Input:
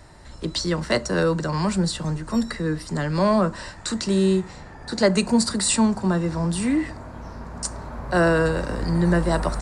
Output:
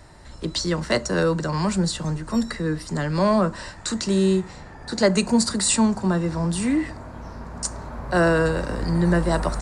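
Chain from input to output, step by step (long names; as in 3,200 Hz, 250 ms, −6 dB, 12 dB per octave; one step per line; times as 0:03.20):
dynamic equaliser 6,600 Hz, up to +4 dB, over −49 dBFS, Q 4.9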